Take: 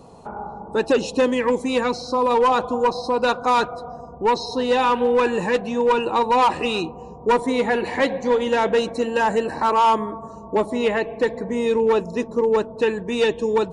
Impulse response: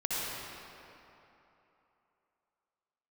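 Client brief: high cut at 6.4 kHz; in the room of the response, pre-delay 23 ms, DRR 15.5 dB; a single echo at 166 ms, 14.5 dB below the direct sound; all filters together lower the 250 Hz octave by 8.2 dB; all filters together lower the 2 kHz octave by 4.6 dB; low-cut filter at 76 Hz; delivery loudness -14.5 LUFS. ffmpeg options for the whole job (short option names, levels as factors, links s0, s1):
-filter_complex "[0:a]highpass=76,lowpass=6400,equalizer=f=250:t=o:g=-9,equalizer=f=2000:t=o:g=-6,aecho=1:1:166:0.188,asplit=2[s0][s1];[1:a]atrim=start_sample=2205,adelay=23[s2];[s1][s2]afir=irnorm=-1:irlink=0,volume=0.0708[s3];[s0][s3]amix=inputs=2:normalize=0,volume=2.66"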